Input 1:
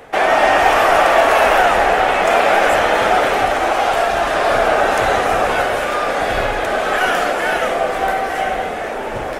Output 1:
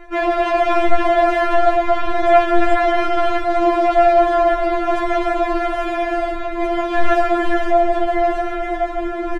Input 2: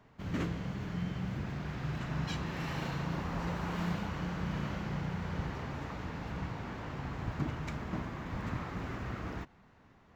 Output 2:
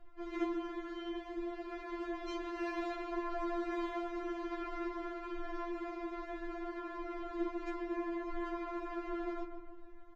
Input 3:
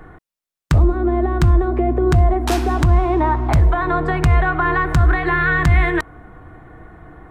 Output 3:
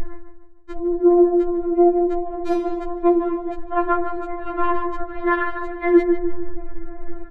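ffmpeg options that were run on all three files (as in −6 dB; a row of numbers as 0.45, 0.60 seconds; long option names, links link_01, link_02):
-filter_complex "[0:a]aemphasis=mode=reproduction:type=riaa,bandreject=frequency=2800:width=24,areverse,acompressor=threshold=-10dB:ratio=4,areverse,asplit=2[link_01][link_02];[link_02]adelay=151,lowpass=frequency=1700:poles=1,volume=-7dB,asplit=2[link_03][link_04];[link_04]adelay=151,lowpass=frequency=1700:poles=1,volume=0.5,asplit=2[link_05][link_06];[link_06]adelay=151,lowpass=frequency=1700:poles=1,volume=0.5,asplit=2[link_07][link_08];[link_08]adelay=151,lowpass=frequency=1700:poles=1,volume=0.5,asplit=2[link_09][link_10];[link_10]adelay=151,lowpass=frequency=1700:poles=1,volume=0.5,asplit=2[link_11][link_12];[link_12]adelay=151,lowpass=frequency=1700:poles=1,volume=0.5[link_13];[link_01][link_03][link_05][link_07][link_09][link_11][link_13]amix=inputs=7:normalize=0,acontrast=77,afftfilt=real='re*4*eq(mod(b,16),0)':imag='im*4*eq(mod(b,16),0)':win_size=2048:overlap=0.75,volume=-5dB"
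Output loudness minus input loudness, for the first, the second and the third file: −2.5, −2.5, −3.5 LU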